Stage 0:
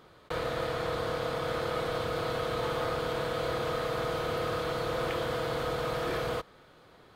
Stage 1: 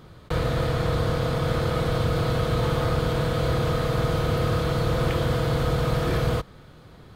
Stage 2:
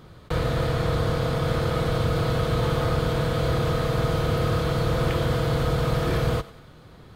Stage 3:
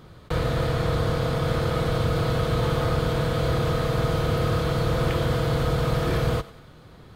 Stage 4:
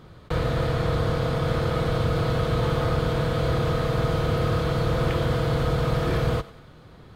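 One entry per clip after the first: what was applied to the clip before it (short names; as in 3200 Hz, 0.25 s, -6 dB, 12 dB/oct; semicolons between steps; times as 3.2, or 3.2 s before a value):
tone controls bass +14 dB, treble +3 dB; gain +3.5 dB
thinning echo 95 ms, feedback 48%, level -17 dB
nothing audible
high shelf 6100 Hz -5.5 dB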